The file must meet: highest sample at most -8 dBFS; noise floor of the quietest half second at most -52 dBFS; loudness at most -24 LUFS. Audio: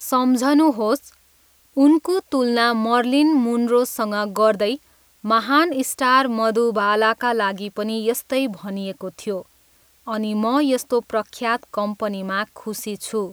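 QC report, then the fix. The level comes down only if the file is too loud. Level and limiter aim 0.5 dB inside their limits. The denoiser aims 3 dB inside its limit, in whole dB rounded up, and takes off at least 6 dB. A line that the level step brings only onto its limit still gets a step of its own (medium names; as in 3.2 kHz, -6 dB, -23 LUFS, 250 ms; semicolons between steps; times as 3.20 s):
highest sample -4.5 dBFS: fail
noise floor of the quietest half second -57 dBFS: pass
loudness -20.0 LUFS: fail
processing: trim -4.5 dB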